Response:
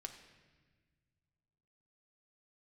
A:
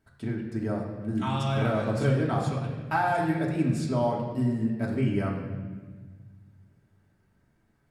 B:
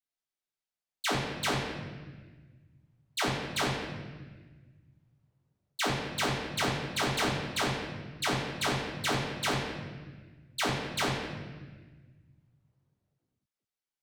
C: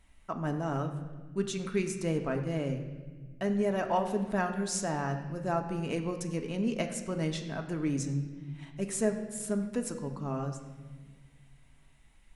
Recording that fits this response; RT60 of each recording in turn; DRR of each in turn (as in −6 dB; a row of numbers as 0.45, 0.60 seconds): C; 1.4, 1.4, 1.5 seconds; −3.0, −8.0, 4.0 decibels